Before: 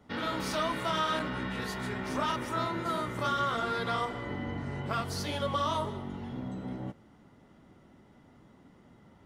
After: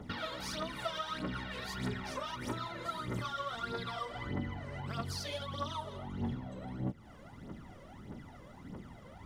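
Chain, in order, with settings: dynamic bell 4.4 kHz, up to +5 dB, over -52 dBFS, Q 1.1; compression 8:1, threshold -45 dBFS, peak gain reduction 19 dB; phaser 1.6 Hz, delay 2 ms, feedback 69%; trim +5 dB

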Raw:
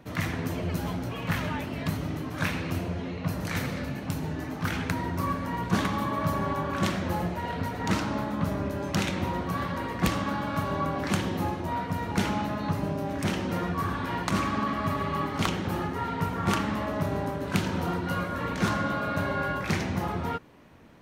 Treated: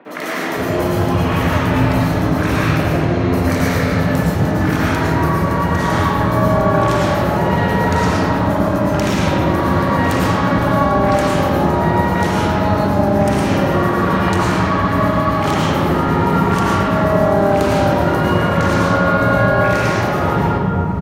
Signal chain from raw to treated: in parallel at +1 dB: compressor with a negative ratio -33 dBFS; on the sum: three bands offset in time mids, highs, lows 50/510 ms, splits 250/2800 Hz; reverberation RT60 3.0 s, pre-delay 70 ms, DRR -6.5 dB; trim +2.5 dB

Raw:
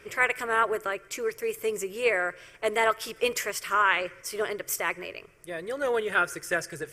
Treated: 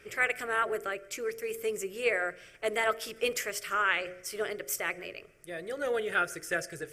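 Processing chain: peaking EQ 1 kHz -13.5 dB 0.23 oct; de-hum 45.35 Hz, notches 16; trim -3 dB

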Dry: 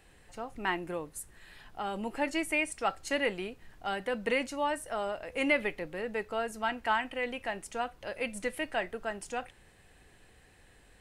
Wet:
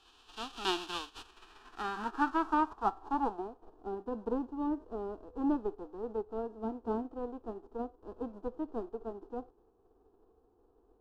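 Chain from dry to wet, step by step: formants flattened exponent 0.1; low-pass sweep 3 kHz -> 490 Hz, 1.08–3.94 s; static phaser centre 560 Hz, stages 6; trim +3 dB

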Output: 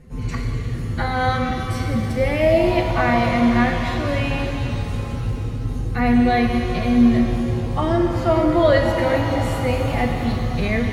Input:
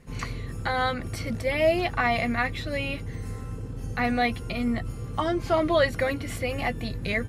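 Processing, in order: tilt shelf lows +4.5 dB, about 690 Hz; time stretch by phase-locked vocoder 1.5×; pitch-shifted reverb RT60 3.5 s, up +7 st, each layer -8 dB, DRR 2.5 dB; trim +4 dB

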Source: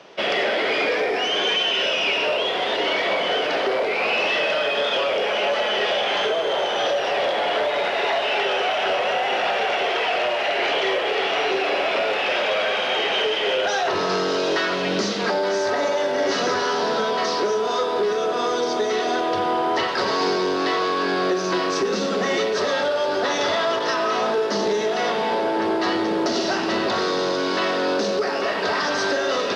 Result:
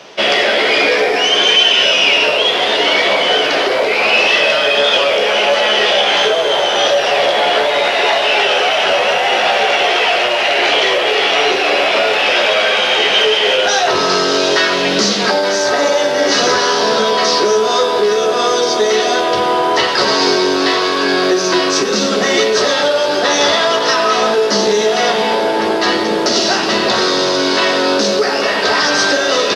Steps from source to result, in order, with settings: treble shelf 3.6 kHz +9.5 dB; doubling 14 ms -7 dB; trim +6.5 dB

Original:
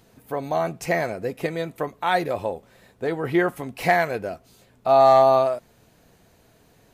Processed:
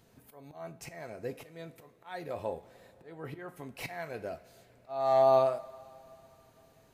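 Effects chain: slow attack 508 ms; two-slope reverb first 0.31 s, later 3.5 s, from -18 dB, DRR 10.5 dB; trim -7.5 dB

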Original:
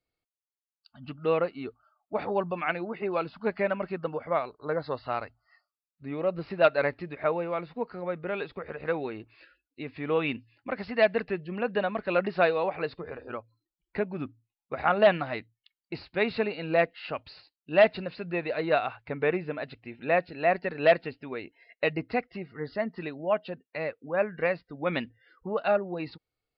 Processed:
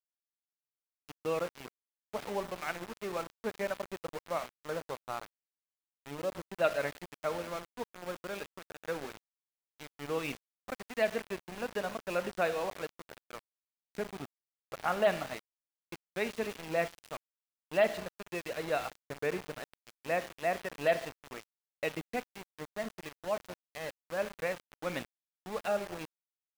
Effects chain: Schroeder reverb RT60 0.87 s, combs from 28 ms, DRR 11 dB; small samples zeroed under -31 dBFS; trim -7.5 dB

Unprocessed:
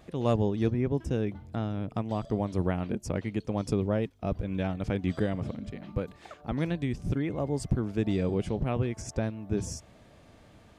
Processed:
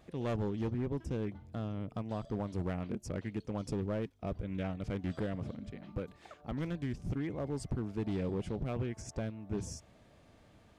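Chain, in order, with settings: overload inside the chain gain 23 dB; loudspeaker Doppler distortion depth 0.18 ms; trim -6 dB

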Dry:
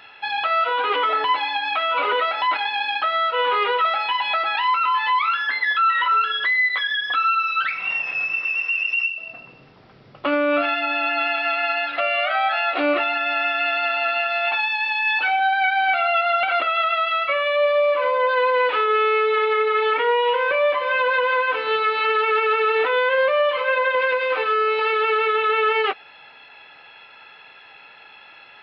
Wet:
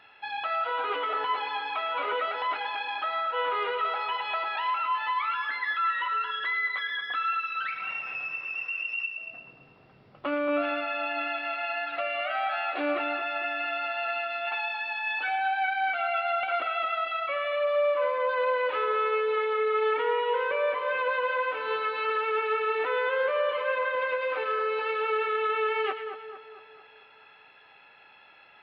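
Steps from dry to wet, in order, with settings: treble shelf 3.8 kHz -9 dB; two-band feedback delay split 1.7 kHz, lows 226 ms, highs 111 ms, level -9 dB; trim -8 dB

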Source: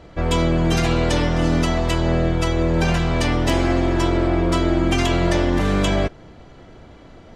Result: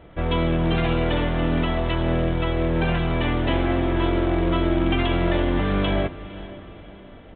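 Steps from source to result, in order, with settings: echo that smears into a reverb 507 ms, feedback 44%, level -16 dB; short-mantissa float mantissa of 2-bit; resampled via 8 kHz; trim -3 dB

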